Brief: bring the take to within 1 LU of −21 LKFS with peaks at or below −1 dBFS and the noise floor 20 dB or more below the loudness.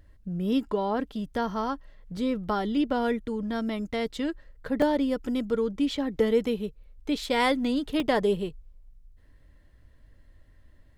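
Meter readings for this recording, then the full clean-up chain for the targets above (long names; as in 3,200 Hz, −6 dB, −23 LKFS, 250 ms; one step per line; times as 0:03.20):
number of dropouts 3; longest dropout 2.1 ms; integrated loudness −28.0 LKFS; sample peak −11.5 dBFS; target loudness −21.0 LKFS
→ repair the gap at 0:02.17/0:04.82/0:08.00, 2.1 ms
level +7 dB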